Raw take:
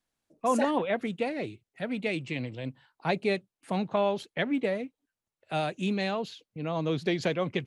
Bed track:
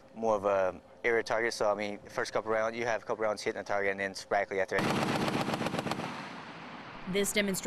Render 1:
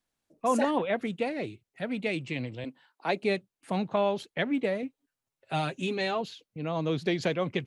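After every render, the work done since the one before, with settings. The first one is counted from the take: 2.64–3.23 HPF 220 Hz 24 dB/oct; 4.82–6.21 comb 7.4 ms, depth 60%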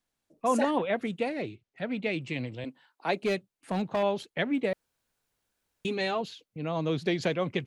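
1.42–2.22 LPF 5100 Hz; 3.13–4.03 overloaded stage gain 22 dB; 4.73–5.85 room tone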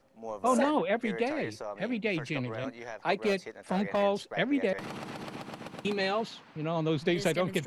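add bed track -10 dB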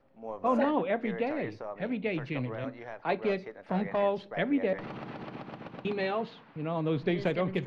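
air absorption 290 m; shoebox room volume 320 m³, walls furnished, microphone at 0.31 m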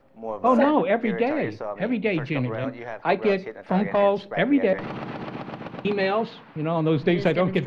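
gain +8 dB

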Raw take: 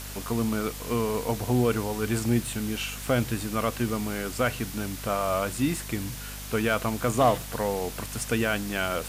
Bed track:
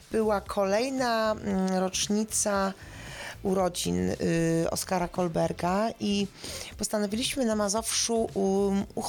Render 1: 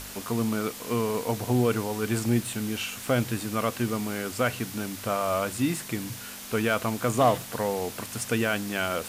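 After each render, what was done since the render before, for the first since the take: de-hum 50 Hz, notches 3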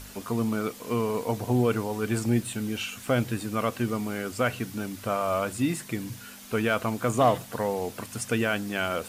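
denoiser 7 dB, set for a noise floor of -41 dBFS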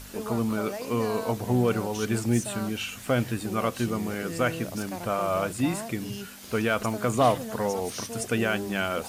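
add bed track -10.5 dB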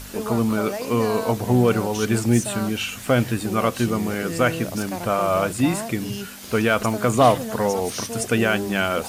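gain +6 dB

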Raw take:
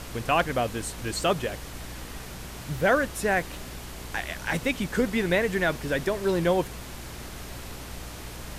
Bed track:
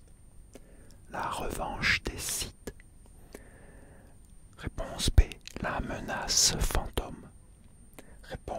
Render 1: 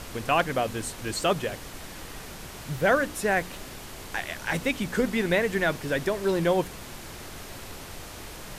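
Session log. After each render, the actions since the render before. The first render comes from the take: de-hum 60 Hz, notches 5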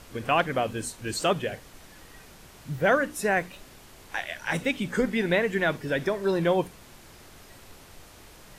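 noise print and reduce 9 dB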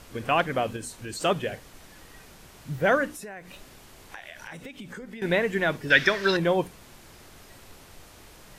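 0.76–1.21 compressor 2.5:1, threshold -34 dBFS; 3.13–5.22 compressor 8:1, threshold -37 dBFS; 5.9–6.37 band shelf 2800 Hz +14 dB 2.5 oct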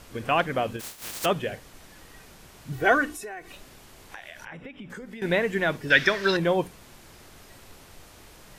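0.79–1.24 spectral contrast lowered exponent 0.11; 2.72–3.53 comb 2.7 ms, depth 81%; 4.45–4.9 polynomial smoothing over 25 samples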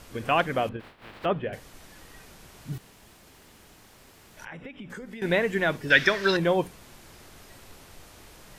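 0.69–1.53 air absorption 460 m; 2.78–4.37 room tone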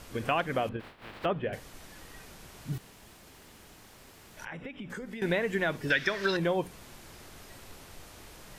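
compressor 3:1, threshold -26 dBFS, peak gain reduction 10 dB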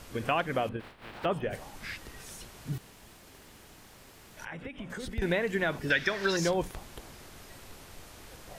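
add bed track -14.5 dB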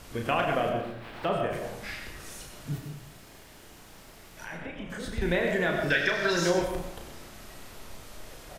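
doubler 34 ms -5 dB; digital reverb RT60 0.79 s, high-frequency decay 0.5×, pre-delay 55 ms, DRR 3.5 dB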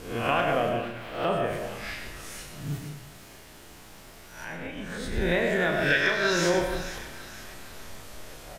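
spectral swells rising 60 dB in 0.54 s; thin delay 0.473 s, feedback 44%, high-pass 1400 Hz, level -11.5 dB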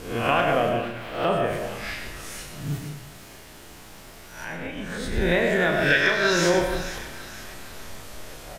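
gain +3.5 dB

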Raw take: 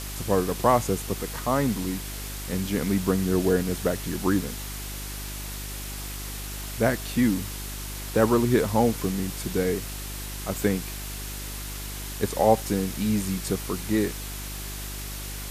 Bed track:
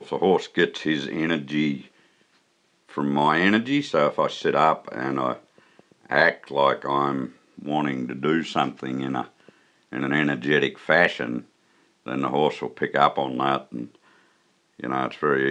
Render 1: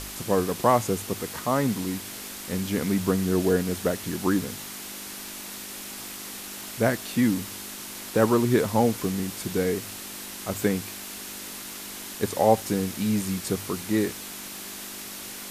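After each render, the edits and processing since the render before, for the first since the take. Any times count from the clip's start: de-hum 50 Hz, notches 3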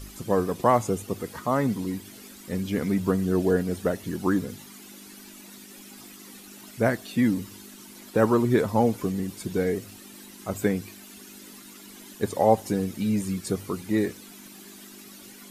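denoiser 13 dB, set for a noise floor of -38 dBFS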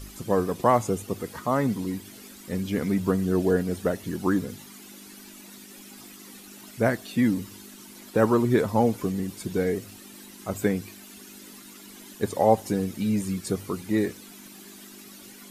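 nothing audible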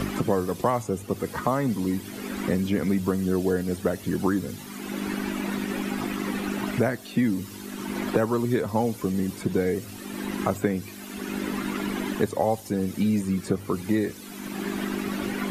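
three-band squash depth 100%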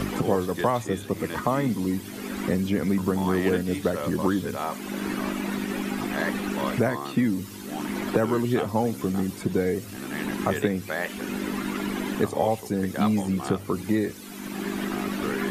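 add bed track -12 dB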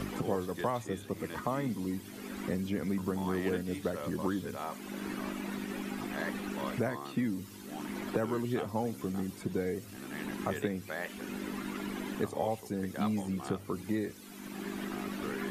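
gain -9 dB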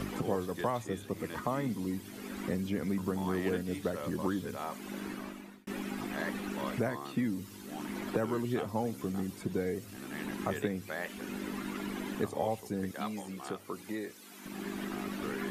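4.94–5.67 fade out; 12.91–14.46 HPF 470 Hz 6 dB/oct

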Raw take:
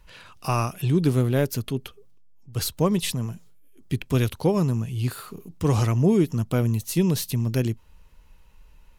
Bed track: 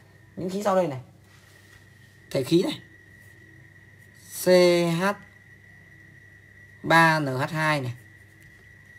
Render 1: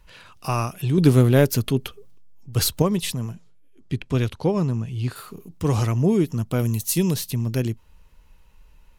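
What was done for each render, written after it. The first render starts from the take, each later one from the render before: 0.98–2.82 gain +6 dB; 3.32–5.16 air absorption 58 m; 6.59–7.14 high shelf 4400 Hz +9.5 dB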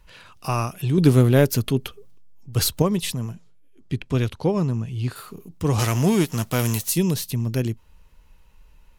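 5.78–6.88 spectral whitening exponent 0.6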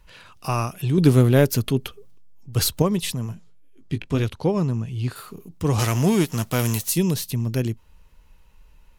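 3.27–4.24 doubler 19 ms -9 dB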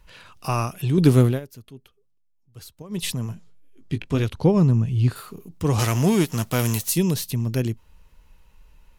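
1.25–3.03 dip -21.5 dB, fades 0.15 s; 4.34–5.18 low shelf 270 Hz +8 dB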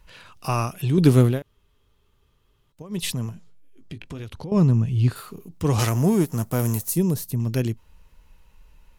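1.42–2.72 room tone; 3.29–4.52 compressor, threshold -32 dBFS; 5.89–7.4 bell 3200 Hz -13 dB 1.9 oct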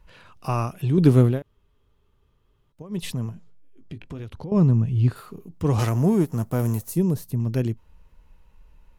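high shelf 2100 Hz -9 dB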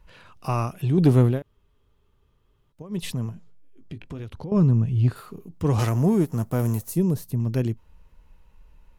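soft clip -7.5 dBFS, distortion -23 dB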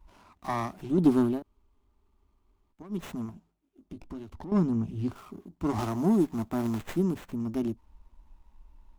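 fixed phaser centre 490 Hz, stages 6; running maximum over 9 samples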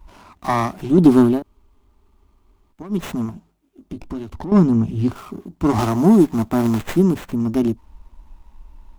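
gain +11.5 dB; limiter -2 dBFS, peak gain reduction 2 dB

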